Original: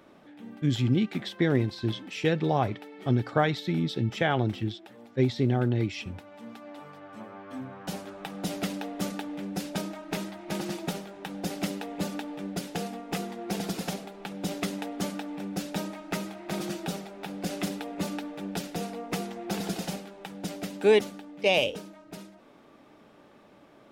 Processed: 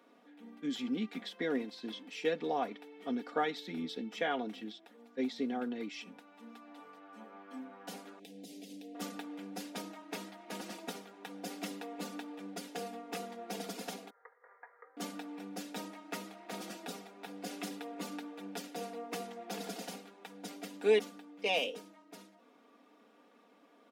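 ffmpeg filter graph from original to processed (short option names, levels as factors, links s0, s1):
-filter_complex "[0:a]asettb=1/sr,asplit=3[s0][s1][s2];[s0]atrim=end=8.194[s3];[s1]atrim=start=8.19:end=8.95,asetpts=PTS-STARTPTS,afade=t=in:d=0.004:c=qsin,afade=t=out:st=0.756:d=0.004:c=qsin,acompressor=threshold=0.02:ratio=12:attack=3.2:release=140:knee=1:detection=peak,asuperstop=centerf=1200:order=4:qfactor=0.52[s4];[s2]atrim=start=8.946[s5];[s3][s4]acrossfade=d=0.004:c1=hsin:c2=qsin[s6];[s6][s5]acrossfade=d=0.004:c1=qsin:c2=hsin,asettb=1/sr,asplit=3[s7][s8][s9];[s7]atrim=end=14.104[s10];[s8]atrim=start=14.1:end=14.97,asetpts=PTS-STARTPTS,afade=t=in:d=0.004:c=qsin,afade=t=out:st=0.866:d=0.004:c=qsin,asuperpass=centerf=1200:order=12:qfactor=1.5,aeval=exprs='val(0)*sin(2*PI*400*n/s)':c=same[s11];[s9]atrim=start=14.966[s12];[s10][s11]acrossfade=d=0.004:c1=hsin:c2=qsin[s13];[s13][s12]acrossfade=d=0.004:c1=qsin:c2=hsin,highpass=f=240:w=0.5412,highpass=f=240:w=1.3066,aecho=1:1:4.2:0.7,volume=0.355"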